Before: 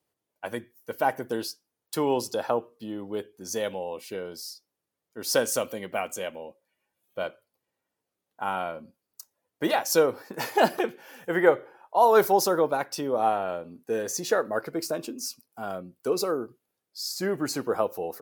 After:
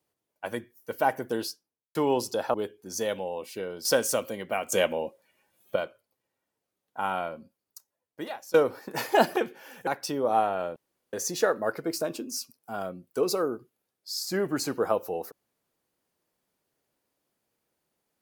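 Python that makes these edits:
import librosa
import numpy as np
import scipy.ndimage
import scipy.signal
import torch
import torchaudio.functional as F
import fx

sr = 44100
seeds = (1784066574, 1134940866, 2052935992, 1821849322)

y = fx.studio_fade_out(x, sr, start_s=1.48, length_s=0.47)
y = fx.edit(y, sr, fx.cut(start_s=2.54, length_s=0.55),
    fx.cut(start_s=4.4, length_s=0.88),
    fx.clip_gain(start_s=6.15, length_s=1.04, db=9.5),
    fx.fade_out_to(start_s=8.71, length_s=1.26, floor_db=-23.0),
    fx.cut(start_s=11.3, length_s=1.46),
    fx.room_tone_fill(start_s=13.65, length_s=0.37), tone=tone)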